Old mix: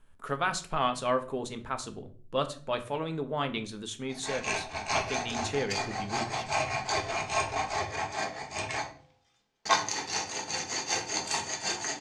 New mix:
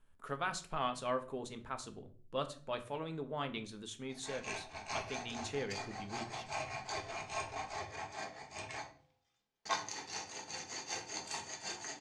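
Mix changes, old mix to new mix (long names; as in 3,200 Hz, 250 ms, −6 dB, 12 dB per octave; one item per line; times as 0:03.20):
speech −8.0 dB
background −11.0 dB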